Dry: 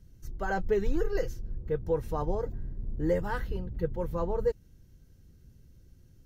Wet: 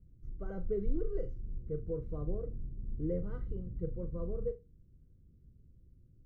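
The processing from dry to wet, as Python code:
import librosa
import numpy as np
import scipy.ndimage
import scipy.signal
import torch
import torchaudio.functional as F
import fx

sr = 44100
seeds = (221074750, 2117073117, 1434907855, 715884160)

p1 = scipy.signal.lfilter(np.full(51, 1.0 / 51), 1.0, x)
p2 = p1 + fx.room_flutter(p1, sr, wall_m=6.8, rt60_s=0.22, dry=0)
y = F.gain(torch.from_numpy(p2), -4.5).numpy()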